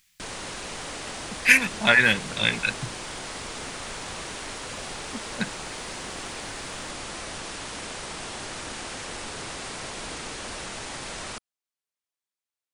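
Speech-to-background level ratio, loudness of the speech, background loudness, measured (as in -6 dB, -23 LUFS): 13.5 dB, -21.0 LUFS, -34.5 LUFS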